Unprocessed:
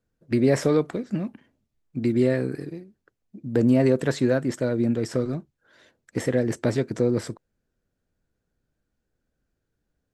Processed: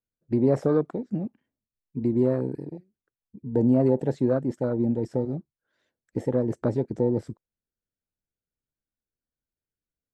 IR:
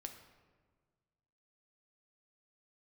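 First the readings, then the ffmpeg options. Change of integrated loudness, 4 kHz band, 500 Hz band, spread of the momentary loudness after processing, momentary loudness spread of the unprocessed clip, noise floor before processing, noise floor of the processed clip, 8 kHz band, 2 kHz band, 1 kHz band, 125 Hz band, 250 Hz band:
−1.5 dB, below −15 dB, −1.5 dB, 16 LU, 16 LU, −80 dBFS, below −85 dBFS, below −15 dB, −14.0 dB, −1.0 dB, −1.5 dB, −1.5 dB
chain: -af "afwtdn=0.0398,volume=-1.5dB"

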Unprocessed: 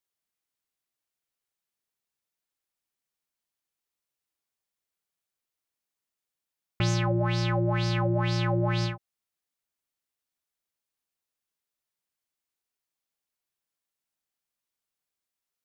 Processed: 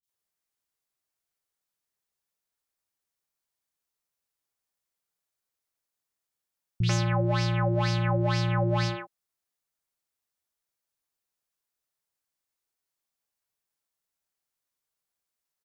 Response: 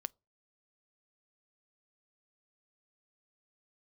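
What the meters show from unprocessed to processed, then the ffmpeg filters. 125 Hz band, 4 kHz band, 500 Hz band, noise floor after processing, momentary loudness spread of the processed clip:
+0.5 dB, −0.5 dB, 0.0 dB, below −85 dBFS, 4 LU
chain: -filter_complex "[0:a]acrossover=split=250|2800[link_01][link_02][link_03];[link_03]adelay=30[link_04];[link_02]adelay=90[link_05];[link_01][link_05][link_04]amix=inputs=3:normalize=0,volume=1.5dB"

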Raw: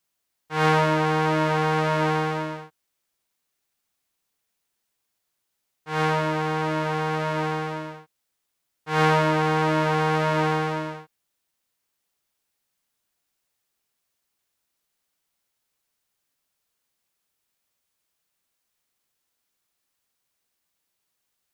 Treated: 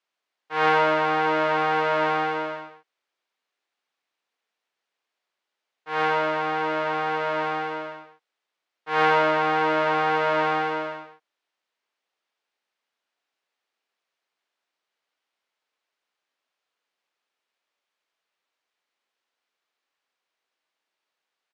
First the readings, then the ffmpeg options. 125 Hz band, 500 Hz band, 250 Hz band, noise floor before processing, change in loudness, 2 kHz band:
−14.0 dB, +0.5 dB, −5.5 dB, −79 dBFS, 0.0 dB, +2.0 dB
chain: -filter_complex "[0:a]highpass=400,lowpass=3500,asplit=2[link_01][link_02];[link_02]aecho=0:1:130:0.355[link_03];[link_01][link_03]amix=inputs=2:normalize=0,volume=1.5dB"

